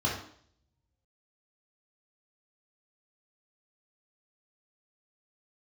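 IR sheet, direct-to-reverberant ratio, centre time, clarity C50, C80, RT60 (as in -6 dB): -4.5 dB, 38 ms, 4.0 dB, 8.0 dB, 0.60 s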